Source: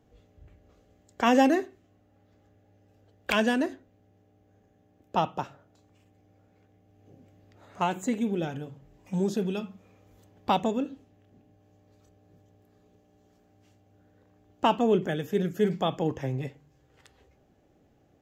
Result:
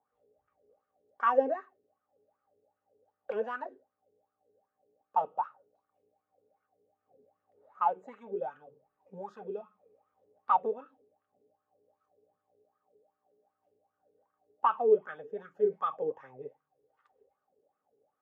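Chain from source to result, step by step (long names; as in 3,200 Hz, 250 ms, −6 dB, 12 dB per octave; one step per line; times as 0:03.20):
notch comb filter 340 Hz
dynamic equaliser 1,400 Hz, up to +7 dB, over −43 dBFS, Q 0.71
LFO wah 2.6 Hz 410–1,300 Hz, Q 9.4
level +4 dB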